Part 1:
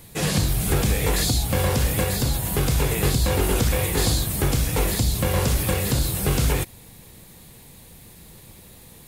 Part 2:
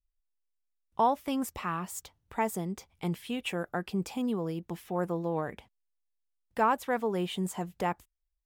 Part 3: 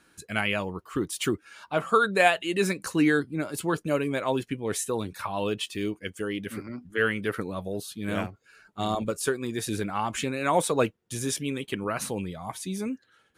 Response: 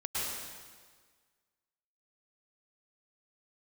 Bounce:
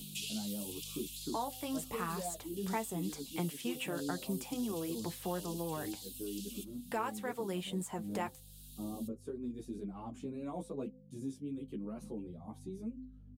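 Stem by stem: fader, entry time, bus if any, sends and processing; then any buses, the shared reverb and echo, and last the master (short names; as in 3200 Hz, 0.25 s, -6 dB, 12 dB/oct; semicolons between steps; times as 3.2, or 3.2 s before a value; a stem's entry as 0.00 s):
-2.0 dB, 0.00 s, no send, steep high-pass 2800 Hz 72 dB/oct; compressor, threshold -31 dBFS, peak gain reduction 9 dB; auto duck -11 dB, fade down 1.75 s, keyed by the third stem
-3.0 dB, 0.35 s, no send, bell 8800 Hz +6.5 dB; vocal rider 0.5 s
-14.5 dB, 0.00 s, no send, EQ curve 130 Hz 0 dB, 230 Hz +11 dB, 1100 Hz -10 dB, 1700 Hz -24 dB; hum 50 Hz, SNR 14 dB; endless flanger 11.7 ms +0.27 Hz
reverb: off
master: de-hum 256.9 Hz, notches 3; flange 0.92 Hz, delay 4.4 ms, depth 5.2 ms, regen -41%; three-band squash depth 70%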